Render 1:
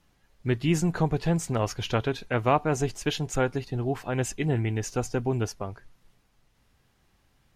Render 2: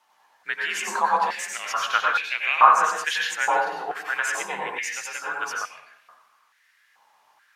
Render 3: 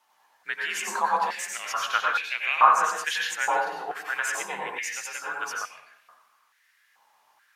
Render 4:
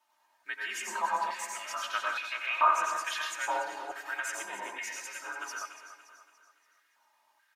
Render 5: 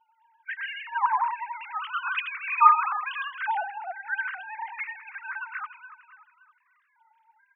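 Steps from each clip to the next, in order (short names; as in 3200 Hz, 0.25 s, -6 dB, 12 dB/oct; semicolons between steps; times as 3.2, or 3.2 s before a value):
frequency shift +43 Hz; plate-style reverb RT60 0.82 s, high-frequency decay 0.45×, pre-delay 80 ms, DRR -2.5 dB; stepped high-pass 2.3 Hz 860–2400 Hz; gain +1 dB
high shelf 9100 Hz +6.5 dB; gain -3 dB
comb 3.2 ms, depth 78%; on a send: feedback echo 0.286 s, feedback 46%, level -12 dB; on the sum: gain -8.5 dB
sine-wave speech; gain +5.5 dB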